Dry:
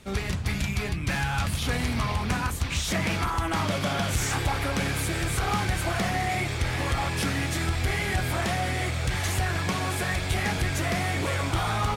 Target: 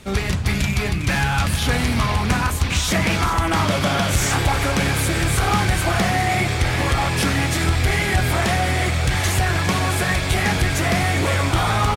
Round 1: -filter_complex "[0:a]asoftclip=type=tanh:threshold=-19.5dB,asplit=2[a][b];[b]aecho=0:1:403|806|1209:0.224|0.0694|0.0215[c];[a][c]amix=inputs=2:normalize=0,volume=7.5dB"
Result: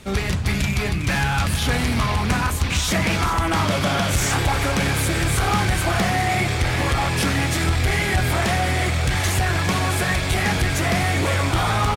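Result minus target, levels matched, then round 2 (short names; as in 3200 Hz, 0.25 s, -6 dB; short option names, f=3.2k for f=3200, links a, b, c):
soft clip: distortion +20 dB
-filter_complex "[0:a]asoftclip=type=tanh:threshold=-8.5dB,asplit=2[a][b];[b]aecho=0:1:403|806|1209:0.224|0.0694|0.0215[c];[a][c]amix=inputs=2:normalize=0,volume=7.5dB"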